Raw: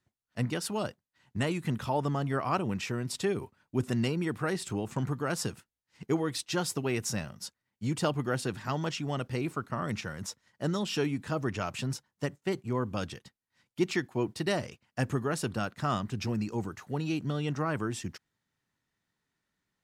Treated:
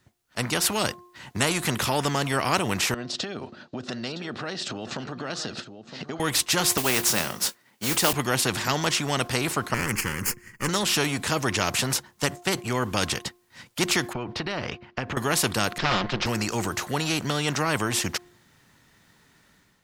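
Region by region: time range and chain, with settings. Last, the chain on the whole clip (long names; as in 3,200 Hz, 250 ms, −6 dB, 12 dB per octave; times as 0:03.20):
0:02.94–0:06.20: downward compressor 5 to 1, threshold −45 dBFS + loudspeaker in its box 160–5,400 Hz, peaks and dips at 240 Hz +8 dB, 620 Hz +6 dB, 980 Hz −9 dB, 2,200 Hz −8 dB, 4,100 Hz +6 dB + single-tap delay 963 ms −17 dB
0:06.77–0:08.13: high-pass filter 210 Hz + noise that follows the level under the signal 18 dB + double-tracking delay 23 ms −14 dB
0:09.74–0:10.69: lower of the sound and its delayed copy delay 0.44 ms + phaser with its sweep stopped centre 1,600 Hz, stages 4
0:14.13–0:15.17: downward compressor, threshold −37 dBFS + high-frequency loss of the air 270 metres
0:15.78–0:16.26: lower of the sound and its delayed copy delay 5.6 ms + low-pass filter 4,300 Hz 24 dB per octave
whole clip: hum removal 354.2 Hz, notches 3; automatic gain control gain up to 8.5 dB; every bin compressed towards the loudest bin 2 to 1; level +2.5 dB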